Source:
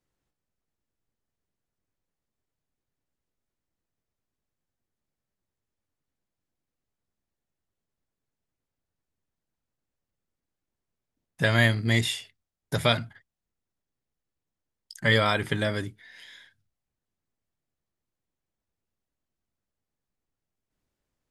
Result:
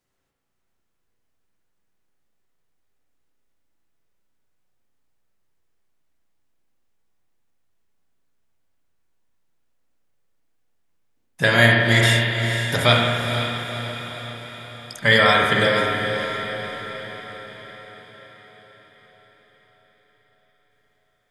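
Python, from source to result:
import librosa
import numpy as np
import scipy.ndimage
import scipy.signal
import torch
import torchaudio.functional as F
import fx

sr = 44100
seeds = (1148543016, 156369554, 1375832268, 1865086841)

y = fx.low_shelf(x, sr, hz=400.0, db=-6.5)
y = fx.echo_diffused(y, sr, ms=496, feedback_pct=57, wet_db=-8)
y = fx.rev_spring(y, sr, rt60_s=1.6, pass_ms=(34, 49), chirp_ms=60, drr_db=-0.5)
y = y * 10.0 ** (6.5 / 20.0)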